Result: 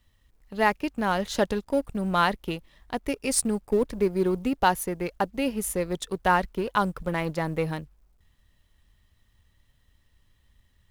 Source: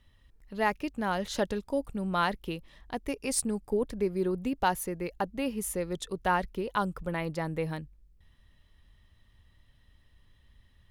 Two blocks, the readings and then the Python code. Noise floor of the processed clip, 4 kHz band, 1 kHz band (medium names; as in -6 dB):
-66 dBFS, +5.0 dB, +5.5 dB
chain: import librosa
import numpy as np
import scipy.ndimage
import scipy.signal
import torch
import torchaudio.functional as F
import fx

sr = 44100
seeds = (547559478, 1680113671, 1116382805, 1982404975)

y = fx.law_mismatch(x, sr, coded='A')
y = y * librosa.db_to_amplitude(6.0)